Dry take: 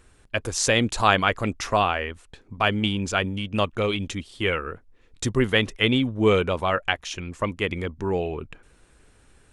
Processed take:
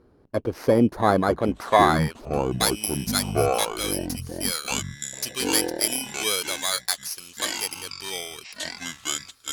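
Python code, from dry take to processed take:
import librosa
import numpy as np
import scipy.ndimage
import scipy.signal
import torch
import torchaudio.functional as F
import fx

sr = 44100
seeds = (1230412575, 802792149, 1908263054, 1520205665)

y = fx.bit_reversed(x, sr, seeds[0], block=16)
y = fx.filter_sweep_bandpass(y, sr, from_hz=330.0, to_hz=5400.0, start_s=1.21, end_s=2.67, q=0.77)
y = fx.echo_pitch(y, sr, ms=770, semitones=-7, count=2, db_per_echo=-6.0)
y = y * 10.0 ** (7.0 / 20.0)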